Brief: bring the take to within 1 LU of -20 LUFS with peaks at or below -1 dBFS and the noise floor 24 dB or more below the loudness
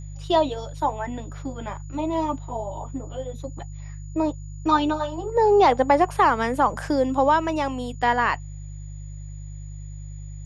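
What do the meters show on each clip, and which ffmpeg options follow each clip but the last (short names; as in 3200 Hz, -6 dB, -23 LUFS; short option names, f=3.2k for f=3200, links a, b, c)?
hum 50 Hz; harmonics up to 150 Hz; hum level -34 dBFS; steady tone 6900 Hz; tone level -52 dBFS; loudness -23.0 LUFS; peak -5.5 dBFS; loudness target -20.0 LUFS
-> -af "bandreject=f=50:t=h:w=4,bandreject=f=100:t=h:w=4,bandreject=f=150:t=h:w=4"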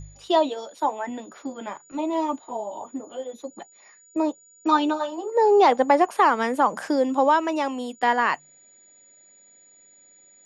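hum none; steady tone 6900 Hz; tone level -52 dBFS
-> -af "bandreject=f=6.9k:w=30"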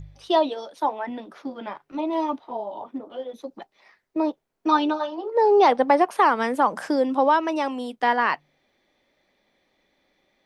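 steady tone none; loudness -23.0 LUFS; peak -5.0 dBFS; loudness target -20.0 LUFS
-> -af "volume=3dB"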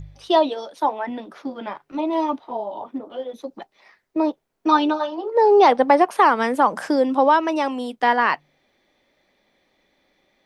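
loudness -20.0 LUFS; peak -2.0 dBFS; noise floor -70 dBFS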